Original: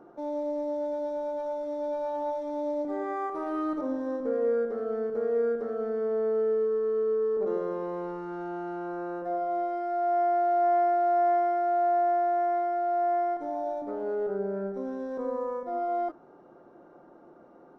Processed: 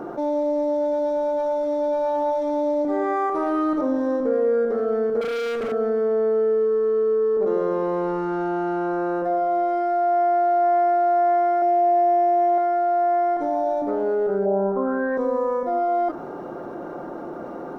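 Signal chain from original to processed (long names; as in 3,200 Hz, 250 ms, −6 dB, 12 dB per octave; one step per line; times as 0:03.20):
0:05.21–0:05.72: hard clipping −36 dBFS, distortion −17 dB
0:11.57–0:12.58: double-tracking delay 49 ms −2 dB
0:14.45–0:15.16: low-pass with resonance 680 Hz → 1,900 Hz, resonance Q 6.4
envelope flattener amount 50%
level +4 dB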